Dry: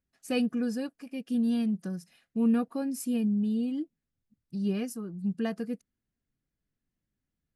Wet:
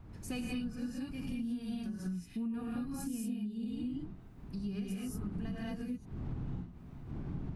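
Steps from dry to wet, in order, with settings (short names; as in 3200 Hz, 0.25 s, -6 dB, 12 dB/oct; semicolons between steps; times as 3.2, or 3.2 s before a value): wind noise 180 Hz -40 dBFS; bell 530 Hz -10 dB 0.54 oct; non-linear reverb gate 0.25 s rising, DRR -4.5 dB; compressor 6:1, threshold -33 dBFS, peak gain reduction 16.5 dB; mismatched tape noise reduction encoder only; gain -3 dB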